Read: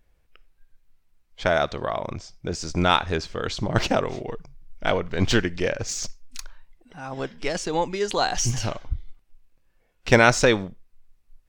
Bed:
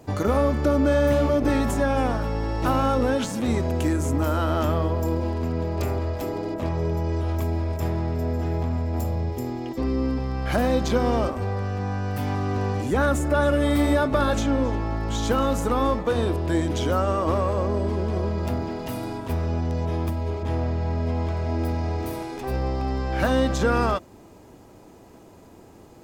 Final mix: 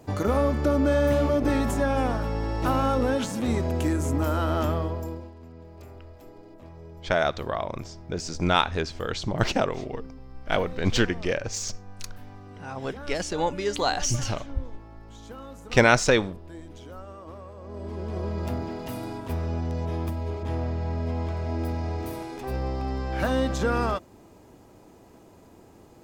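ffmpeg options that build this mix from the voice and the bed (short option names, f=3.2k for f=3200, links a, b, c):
-filter_complex "[0:a]adelay=5650,volume=-2dB[a];[1:a]volume=14dB,afade=t=out:st=4.63:d=0.68:silence=0.133352,afade=t=in:st=17.61:d=0.78:silence=0.158489[b];[a][b]amix=inputs=2:normalize=0"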